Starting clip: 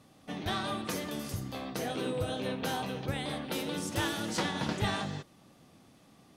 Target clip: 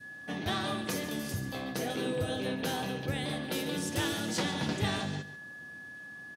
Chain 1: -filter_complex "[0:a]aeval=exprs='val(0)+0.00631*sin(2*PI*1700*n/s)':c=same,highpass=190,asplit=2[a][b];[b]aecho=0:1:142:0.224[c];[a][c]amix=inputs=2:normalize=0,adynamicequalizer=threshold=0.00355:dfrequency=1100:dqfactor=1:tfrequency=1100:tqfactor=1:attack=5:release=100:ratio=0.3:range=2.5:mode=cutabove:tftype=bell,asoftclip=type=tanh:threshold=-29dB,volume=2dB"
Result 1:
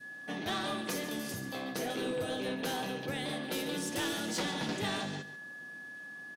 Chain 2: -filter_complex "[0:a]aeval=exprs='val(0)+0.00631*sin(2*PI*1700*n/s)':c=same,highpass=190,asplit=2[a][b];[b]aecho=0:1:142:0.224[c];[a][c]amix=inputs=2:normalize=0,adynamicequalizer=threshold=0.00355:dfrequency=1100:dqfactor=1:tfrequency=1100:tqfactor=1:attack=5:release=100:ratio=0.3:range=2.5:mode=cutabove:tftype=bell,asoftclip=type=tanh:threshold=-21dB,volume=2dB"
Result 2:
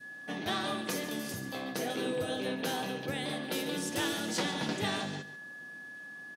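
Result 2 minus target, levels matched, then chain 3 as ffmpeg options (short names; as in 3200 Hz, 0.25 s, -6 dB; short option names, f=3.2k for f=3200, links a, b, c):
125 Hz band -5.0 dB
-filter_complex "[0:a]aeval=exprs='val(0)+0.00631*sin(2*PI*1700*n/s)':c=same,highpass=66,asplit=2[a][b];[b]aecho=0:1:142:0.224[c];[a][c]amix=inputs=2:normalize=0,adynamicequalizer=threshold=0.00355:dfrequency=1100:dqfactor=1:tfrequency=1100:tqfactor=1:attack=5:release=100:ratio=0.3:range=2.5:mode=cutabove:tftype=bell,asoftclip=type=tanh:threshold=-21dB,volume=2dB"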